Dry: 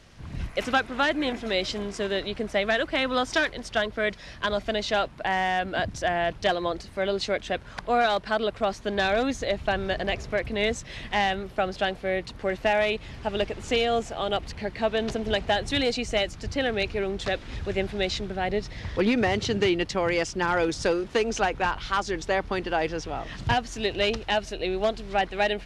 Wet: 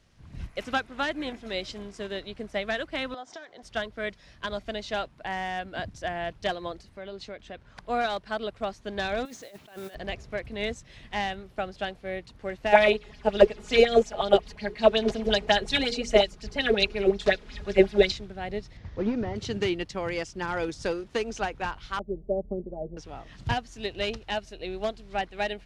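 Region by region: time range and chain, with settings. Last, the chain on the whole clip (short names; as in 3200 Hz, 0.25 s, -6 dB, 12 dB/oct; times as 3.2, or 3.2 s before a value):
3.14–3.63 compressor 16:1, threshold -29 dBFS + speaker cabinet 260–7300 Hz, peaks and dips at 720 Hz +10 dB, 2600 Hz -7 dB, 4600 Hz -5 dB
6.89–7.76 high shelf 7800 Hz -10.5 dB + compressor 2.5:1, threshold -28 dBFS
9.25–9.95 BPF 250–7700 Hz + negative-ratio compressor -34 dBFS + modulation noise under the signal 16 dB
12.72–18.12 notches 60/120/180/240/300/360/420/480 Hz + comb 4.8 ms, depth 68% + LFO bell 5.5 Hz 370–5600 Hz +12 dB
18.77–19.36 delta modulation 32 kbps, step -38.5 dBFS + high shelf 2000 Hz -11.5 dB
21.99–22.97 elliptic low-pass 630 Hz, stop band 80 dB + comb 5 ms, depth 74%
whole clip: tone controls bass +3 dB, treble +2 dB; upward expander 1.5:1, over -35 dBFS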